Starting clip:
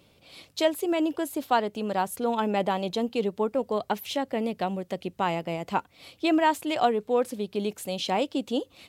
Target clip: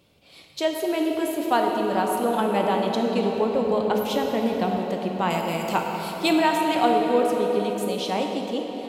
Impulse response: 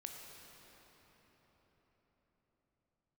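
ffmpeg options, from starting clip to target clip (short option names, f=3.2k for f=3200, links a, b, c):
-filter_complex "[0:a]asettb=1/sr,asplit=3[a][b][c];[a]atrim=end=5.304[d];[b]atrim=start=5.3:end=6.33,asetpts=PTS-STARTPTS,afade=t=in:d=0.004:c=qsin,afade=t=out:st=1.026:d=0.004:c=qsin,aemphasis=mode=production:type=75kf[e];[c]atrim=start=6.326[f];[d][e]acrossfade=d=0.004:c1=hsin:c2=qsin[g];[g][f]acrossfade=d=0.004:c1=qsin:c2=hsin[h];[1:a]atrim=start_sample=2205[i];[h][i]afir=irnorm=-1:irlink=0,dynaudnorm=f=110:g=17:m=3dB,asettb=1/sr,asplit=3[j][k][l];[j]atrim=end=3.344[m];[k]atrim=start=3.34:end=4.79,asetpts=PTS-STARTPTS,afade=t=in:d=0.004:c=qsin,afade=t=out:st=1.446:d=0.004:c=qsin,equalizer=f=81:w=1.4:g=11[n];[l]atrim=start=4.786[o];[m][n]acrossfade=d=0.004:c1=hsin:c2=qsin[p];[p][o]acrossfade=d=0.004:c1=qsin:c2=hsin,volume=4dB"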